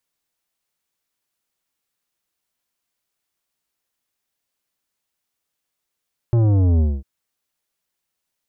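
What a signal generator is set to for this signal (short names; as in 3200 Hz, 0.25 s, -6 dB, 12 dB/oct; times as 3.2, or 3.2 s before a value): sub drop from 120 Hz, over 0.70 s, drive 11.5 dB, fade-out 0.23 s, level -14 dB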